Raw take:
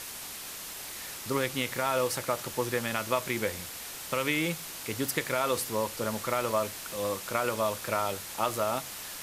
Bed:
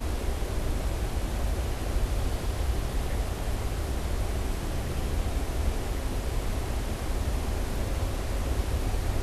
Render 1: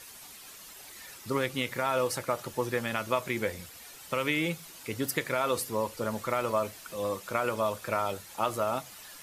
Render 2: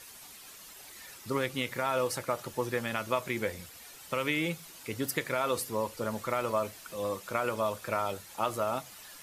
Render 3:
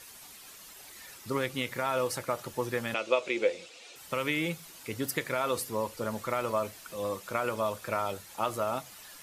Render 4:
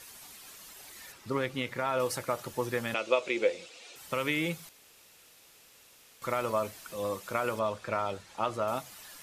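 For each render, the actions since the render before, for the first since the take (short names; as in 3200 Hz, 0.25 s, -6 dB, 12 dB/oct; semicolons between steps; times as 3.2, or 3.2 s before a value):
denoiser 10 dB, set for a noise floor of -41 dBFS
gain -1.5 dB
2.94–3.96 speaker cabinet 330–7500 Hz, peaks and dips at 340 Hz +6 dB, 510 Hz +9 dB, 1000 Hz -4 dB, 1700 Hz -6 dB, 2600 Hz +8 dB, 3700 Hz +4 dB
1.12–2 LPF 3600 Hz 6 dB/oct; 4.69–6.22 room tone; 7.59–8.68 air absorption 70 m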